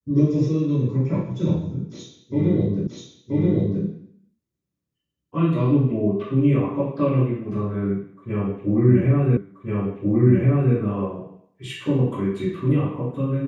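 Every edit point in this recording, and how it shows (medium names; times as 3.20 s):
2.87 s: repeat of the last 0.98 s
9.37 s: repeat of the last 1.38 s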